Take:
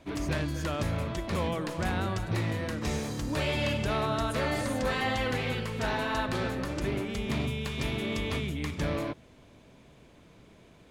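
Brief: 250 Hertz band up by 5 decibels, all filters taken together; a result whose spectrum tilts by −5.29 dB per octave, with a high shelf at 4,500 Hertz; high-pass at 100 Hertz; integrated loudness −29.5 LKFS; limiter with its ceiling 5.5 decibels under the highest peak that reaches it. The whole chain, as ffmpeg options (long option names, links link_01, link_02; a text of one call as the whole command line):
ffmpeg -i in.wav -af "highpass=100,equalizer=frequency=250:width_type=o:gain=6.5,highshelf=frequency=4500:gain=-4,volume=1.5dB,alimiter=limit=-20dB:level=0:latency=1" out.wav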